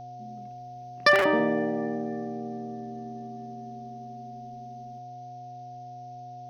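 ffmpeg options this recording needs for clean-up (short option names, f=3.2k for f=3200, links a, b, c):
-af "bandreject=f=126.4:t=h:w=4,bandreject=f=252.8:t=h:w=4,bandreject=f=379.2:t=h:w=4,bandreject=f=505.6:t=h:w=4,bandreject=f=632:t=h:w=4,bandreject=f=720:w=30,afftdn=nr=30:nf=-42"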